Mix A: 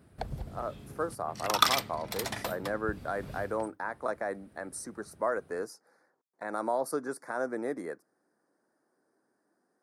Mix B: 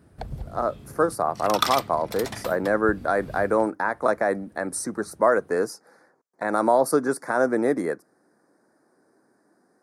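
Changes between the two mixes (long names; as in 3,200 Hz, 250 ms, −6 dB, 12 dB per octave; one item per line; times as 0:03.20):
speech +10.5 dB
master: add low-shelf EQ 240 Hz +5 dB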